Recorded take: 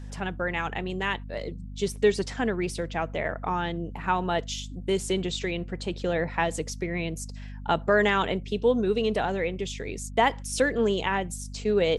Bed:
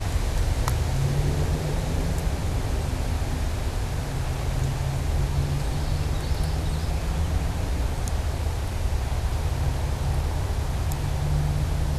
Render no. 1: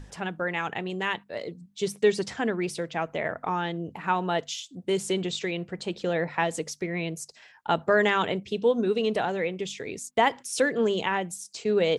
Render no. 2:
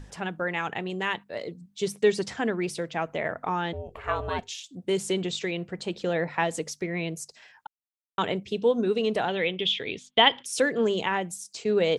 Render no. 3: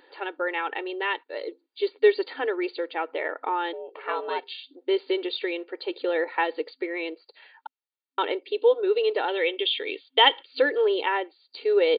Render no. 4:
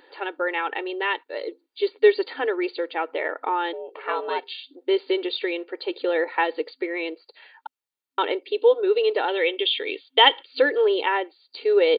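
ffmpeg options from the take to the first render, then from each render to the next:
ffmpeg -i in.wav -af "bandreject=frequency=50:width_type=h:width=6,bandreject=frequency=100:width_type=h:width=6,bandreject=frequency=150:width_type=h:width=6,bandreject=frequency=200:width_type=h:width=6,bandreject=frequency=250:width_type=h:width=6" out.wav
ffmpeg -i in.wav -filter_complex "[0:a]asettb=1/sr,asplit=3[link_01][link_02][link_03];[link_01]atrim=end=3.734[link_04];[link_02]atrim=start=3.73:end=4.64,asetpts=PTS-STARTPTS,afade=type=in:duration=0.004:curve=qsin,afade=type=out:start_time=0.906:duration=0.004:curve=qsin,aeval=exprs='val(0)*sin(2*PI*250*n/s)':channel_layout=same[link_05];[link_03]atrim=start=4.636[link_06];[link_04][link_05]acrossfade=duration=0.004:curve1=hsin:curve2=qsin[link_07];[link_07][link_06]acrossfade=duration=0.004:curve1=qsin:curve2=hsin,asettb=1/sr,asplit=3[link_08][link_09][link_10];[link_08]atrim=end=9.284[link_11];[link_09]atrim=start=9.28:end=10.46,asetpts=PTS-STARTPTS,afade=type=in:duration=0.004:curve=qsin,afade=type=out:start_time=1.176:duration=0.004:curve=qsin,lowpass=frequency=3300:width_type=q:width=7.6[link_12];[link_10]atrim=start=10.456[link_13];[link_11][link_12]acrossfade=duration=0.004:curve1=hsin:curve2=qsin[link_14];[link_14][link_13]acrossfade=duration=0.004:curve1=qsin:curve2=hsin,asplit=3[link_15][link_16][link_17];[link_15]atrim=end=7.67,asetpts=PTS-STARTPTS,afade=type=out:start_time=7.666:duration=0.004:curve=hsin[link_18];[link_16]atrim=start=7.67:end=8.18,asetpts=PTS-STARTPTS,volume=0[link_19];[link_17]atrim=start=8.18,asetpts=PTS-STARTPTS,afade=type=in:duration=0.004:curve=hsin[link_20];[link_18][link_19][link_20]concat=n=3:v=0:a=1" out.wav
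ffmpeg -i in.wav -af "afftfilt=real='re*between(b*sr/4096,260,4800)':imag='im*between(b*sr/4096,260,4800)':win_size=4096:overlap=0.75,aecho=1:1:2.2:0.52" out.wav
ffmpeg -i in.wav -af "volume=2.5dB" out.wav

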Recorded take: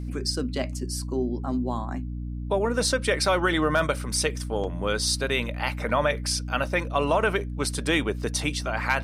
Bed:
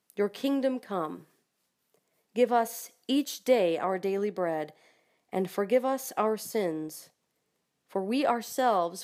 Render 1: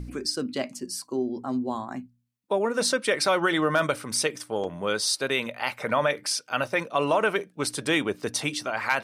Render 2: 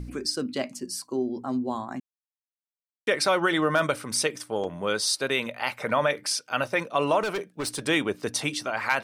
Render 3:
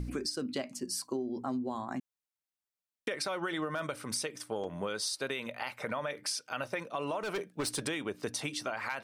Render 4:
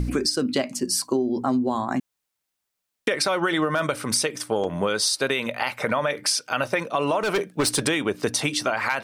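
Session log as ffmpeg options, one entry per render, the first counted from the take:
ffmpeg -i in.wav -af "bandreject=frequency=60:width_type=h:width=4,bandreject=frequency=120:width_type=h:width=4,bandreject=frequency=180:width_type=h:width=4,bandreject=frequency=240:width_type=h:width=4,bandreject=frequency=300:width_type=h:width=4" out.wav
ffmpeg -i in.wav -filter_complex "[0:a]asettb=1/sr,asplit=3[link_01][link_02][link_03];[link_01]atrim=end=7.234[link_04];[link_02]atrim=start=7.23:end=7.83,asetpts=PTS-STARTPTS,afade=type=in:duration=0.004:curve=qsin,afade=type=out:start_time=0.596:duration=0.004:curve=qsin,volume=25.5dB,asoftclip=hard,volume=-25.5dB[link_05];[link_03]atrim=start=7.826[link_06];[link_04][link_05]acrossfade=duration=0.004:curve1=hsin:curve2=qsin[link_07];[link_07][link_06]acrossfade=duration=0.004:curve1=qsin:curve2=hsin,asplit=3[link_08][link_09][link_10];[link_08]atrim=end=2,asetpts=PTS-STARTPTS,afade=type=out:start_time=1.996:duration=0.004:curve=hsin[link_11];[link_09]atrim=start=2:end=3.07,asetpts=PTS-STARTPTS,volume=0[link_12];[link_10]atrim=start=3.07,asetpts=PTS-STARTPTS,afade=type=in:duration=0.004:curve=hsin[link_13];[link_11][link_12][link_13]concat=n=3:v=0:a=1" out.wav
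ffmpeg -i in.wav -af "alimiter=limit=-20.5dB:level=0:latency=1:release=433,acompressor=threshold=-31dB:ratio=6" out.wav
ffmpeg -i in.wav -af "volume=12dB" out.wav

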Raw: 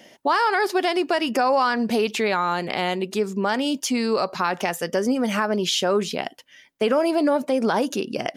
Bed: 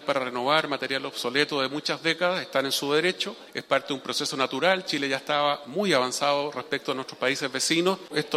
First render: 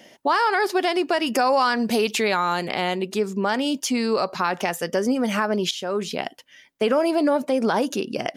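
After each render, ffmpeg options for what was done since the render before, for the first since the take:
ffmpeg -i in.wav -filter_complex "[0:a]asettb=1/sr,asplit=3[link_01][link_02][link_03];[link_01]atrim=end=1.264[link_04];[link_02]atrim=start=1.26:end=2.69,asetpts=PTS-STARTPTS,afade=type=in:duration=0.004:curve=qsin,afade=type=out:start_time=1.426:duration=0.004:curve=qsin,highshelf=frequency=4300:gain=7[link_05];[link_03]atrim=start=2.686[link_06];[link_04][link_05]acrossfade=duration=0.004:curve1=hsin:curve2=qsin[link_07];[link_07][link_06]acrossfade=duration=0.004:curve1=qsin:curve2=hsin,asplit=2[link_08][link_09];[link_08]atrim=end=5.71,asetpts=PTS-STARTPTS,afade=type=out:start_time=5.706:duration=0.004:curve=hsin:silence=0.237137[link_10];[link_09]atrim=start=5.71,asetpts=PTS-STARTPTS,afade=type=in:duration=0.49:silence=0.237137[link_11];[link_10][link_11]concat=n=2:v=0:a=1" out.wav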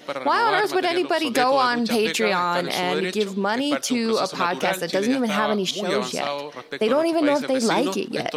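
ffmpeg -i in.wav -i bed.wav -filter_complex "[1:a]volume=-4dB[link_01];[0:a][link_01]amix=inputs=2:normalize=0" out.wav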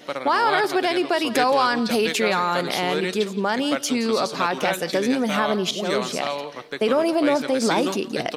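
ffmpeg -i in.wav -af "aecho=1:1:172:0.141" out.wav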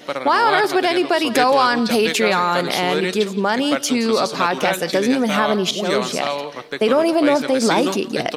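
ffmpeg -i in.wav -af "volume=4dB,alimiter=limit=-2dB:level=0:latency=1" out.wav

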